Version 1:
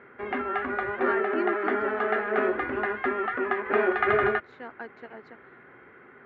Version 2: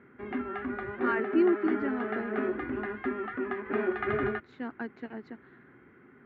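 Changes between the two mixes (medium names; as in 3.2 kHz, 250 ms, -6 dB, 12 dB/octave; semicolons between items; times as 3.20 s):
background -8.5 dB; master: add resonant low shelf 380 Hz +8.5 dB, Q 1.5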